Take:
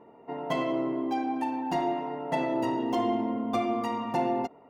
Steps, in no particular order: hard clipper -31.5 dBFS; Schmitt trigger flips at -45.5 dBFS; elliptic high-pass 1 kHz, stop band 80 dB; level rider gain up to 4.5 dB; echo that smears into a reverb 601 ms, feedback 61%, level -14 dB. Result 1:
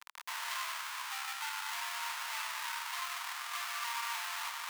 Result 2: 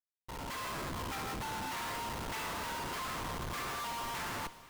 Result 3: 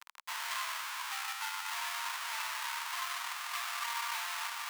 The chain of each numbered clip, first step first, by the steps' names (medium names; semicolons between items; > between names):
level rider > hard clipper > echo that smears into a reverb > Schmitt trigger > elliptic high-pass; hard clipper > elliptic high-pass > Schmitt trigger > echo that smears into a reverb > level rider; echo that smears into a reverb > Schmitt trigger > level rider > hard clipper > elliptic high-pass